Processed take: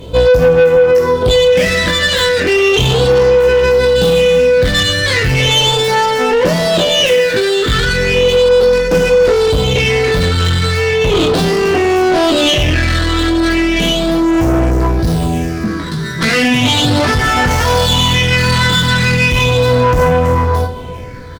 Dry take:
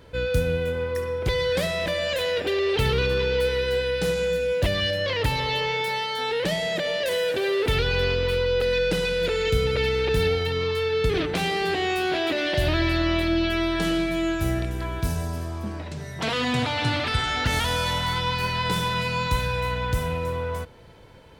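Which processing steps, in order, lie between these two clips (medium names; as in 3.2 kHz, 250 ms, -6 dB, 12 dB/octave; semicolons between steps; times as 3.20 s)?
in parallel at +0.5 dB: compressor with a negative ratio -27 dBFS; on the sum: phase shifter stages 6, 0.36 Hz, lowest notch 670–3500 Hz; on a send at -13.5 dB: reverberation, pre-delay 3 ms; on the sum: chorus 0.13 Hz, delay 17.5 ms, depth 7.3 ms; feedback delay 395 ms, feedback 45%, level -21 dB; saturation -23 dBFS, distortion -12 dB; feedback comb 250 Hz, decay 0.33 s, harmonics all, mix 70%; dynamic bell 3 kHz, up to +5 dB, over -55 dBFS, Q 2.3; loudness maximiser +27 dB; sliding maximum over 3 samples; trim -3 dB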